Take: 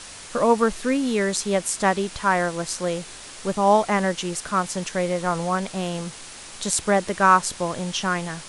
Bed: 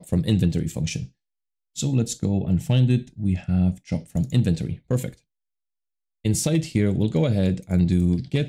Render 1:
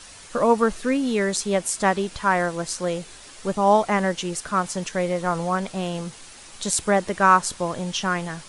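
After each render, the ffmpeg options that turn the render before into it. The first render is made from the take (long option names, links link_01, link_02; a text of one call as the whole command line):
ffmpeg -i in.wav -af "afftdn=noise_reduction=6:noise_floor=-41" out.wav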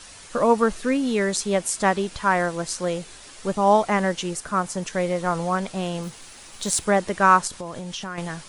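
ffmpeg -i in.wav -filter_complex "[0:a]asettb=1/sr,asplit=3[link_01][link_02][link_03];[link_01]atrim=end=4.334[link_04];[link_02]atrim=start=4.33:end=4.88,asetpts=PTS-STARTPTS,afade=type=in:duration=0.004:curve=qsin,afade=type=out:start_time=0.546:duration=0.004:curve=qsin,equalizer=frequency=3500:width=0.76:gain=-4.5[link_05];[link_03]atrim=start=4.876[link_06];[link_04][link_05]acrossfade=duration=0.004:curve1=hsin:curve2=qsin[link_07];[link_07][link_06]acrossfade=duration=0.004:curve1=qsin:curve2=hsin,asettb=1/sr,asplit=3[link_08][link_09][link_10];[link_08]atrim=end=6.034[link_11];[link_09]atrim=start=6.03:end=6.85,asetpts=PTS-STARTPTS,afade=type=in:duration=0.004:curve=qsin,afade=type=out:start_time=0.816:duration=0.004:curve=qsin,acrusher=bits=5:mode=log:mix=0:aa=0.000001[link_12];[link_10]atrim=start=6.846[link_13];[link_11][link_12]acrossfade=duration=0.004:curve1=hsin:curve2=qsin[link_14];[link_14][link_13]acrossfade=duration=0.004:curve1=qsin:curve2=hsin,asettb=1/sr,asplit=3[link_15][link_16][link_17];[link_15]atrim=end=7.474[link_18];[link_16]atrim=start=7.47:end=8.18,asetpts=PTS-STARTPTS,afade=type=in:duration=0.004:curve=qsin,afade=type=out:start_time=0.706:duration=0.004:curve=qsin,acompressor=threshold=-29dB:ratio=5:attack=3.2:release=140:knee=1:detection=peak[link_19];[link_17]atrim=start=8.176[link_20];[link_18][link_19]acrossfade=duration=0.004:curve1=hsin:curve2=qsin[link_21];[link_21][link_20]acrossfade=duration=0.004:curve1=qsin:curve2=hsin" out.wav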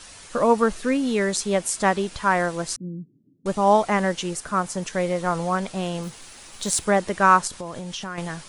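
ffmpeg -i in.wav -filter_complex "[0:a]asettb=1/sr,asplit=3[link_01][link_02][link_03];[link_01]atrim=end=2.764[link_04];[link_02]atrim=start=2.76:end=3.46,asetpts=PTS-STARTPTS,afade=type=in:duration=0.004:curve=qsin,afade=type=out:start_time=0.696:duration=0.004:curve=qsin,asuperpass=centerf=190:order=8:qfactor=1[link_05];[link_03]atrim=start=3.456[link_06];[link_04][link_05]acrossfade=duration=0.004:curve1=hsin:curve2=qsin[link_07];[link_07][link_06]acrossfade=duration=0.004:curve1=qsin:curve2=hsin" out.wav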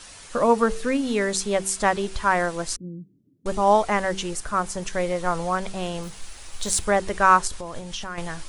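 ffmpeg -i in.wav -af "bandreject=frequency=64.02:width_type=h:width=4,bandreject=frequency=128.04:width_type=h:width=4,bandreject=frequency=192.06:width_type=h:width=4,bandreject=frequency=256.08:width_type=h:width=4,bandreject=frequency=320.1:width_type=h:width=4,bandreject=frequency=384.12:width_type=h:width=4,bandreject=frequency=448.14:width_type=h:width=4,asubboost=boost=6.5:cutoff=66" out.wav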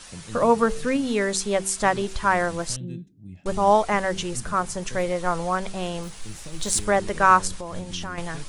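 ffmpeg -i in.wav -i bed.wav -filter_complex "[1:a]volume=-19dB[link_01];[0:a][link_01]amix=inputs=2:normalize=0" out.wav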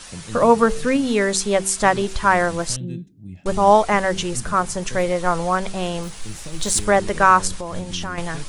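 ffmpeg -i in.wav -af "volume=4.5dB,alimiter=limit=-2dB:level=0:latency=1" out.wav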